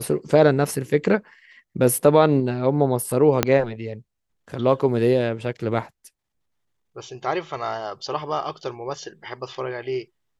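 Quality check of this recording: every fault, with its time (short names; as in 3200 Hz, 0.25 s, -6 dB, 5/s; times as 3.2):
3.43 pop -2 dBFS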